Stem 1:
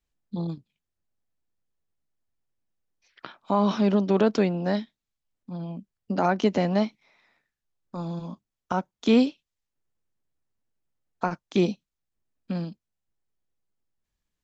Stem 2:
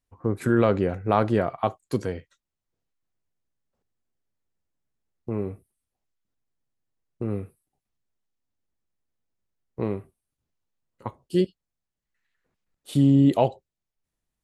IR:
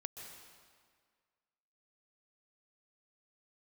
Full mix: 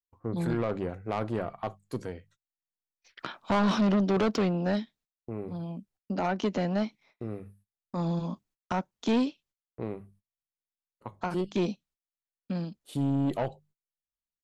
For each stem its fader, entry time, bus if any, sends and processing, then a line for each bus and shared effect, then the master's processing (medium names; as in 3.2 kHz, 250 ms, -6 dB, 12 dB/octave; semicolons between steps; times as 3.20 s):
-1.5 dB, 0.00 s, no send, level rider gain up to 7.5 dB; auto duck -8 dB, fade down 1.70 s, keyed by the second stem
-4.5 dB, 0.00 s, no send, valve stage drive 12 dB, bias 0.65; hum notches 50/100/150/200 Hz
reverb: none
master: saturation -20.5 dBFS, distortion -8 dB; gate -60 dBFS, range -26 dB